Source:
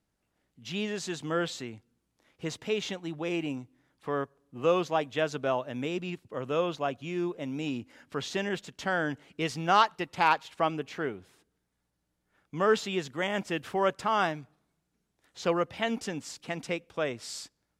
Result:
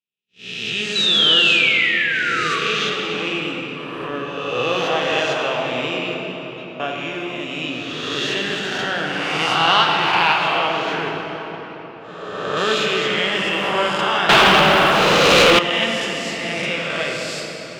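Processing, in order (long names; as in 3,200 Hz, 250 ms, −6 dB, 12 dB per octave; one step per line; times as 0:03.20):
peak hold with a rise ahead of every peak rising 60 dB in 1.75 s
0:06.14–0:06.80: tuned comb filter 320 Hz, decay 0.31 s, harmonics all, mix 100%
0:11.10–0:12.57: high-shelf EQ 2,200 Hz −7.5 dB
noise gate −40 dBFS, range −50 dB
0:00.95–0:02.59: sound drawn into the spectrogram fall 1,100–4,000 Hz −27 dBFS
convolution reverb RT60 4.5 s, pre-delay 15 ms, DRR −0.5 dB
0:14.29–0:15.59: leveller curve on the samples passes 5
parametric band 3,000 Hz +12 dB 1.2 octaves
level −1 dB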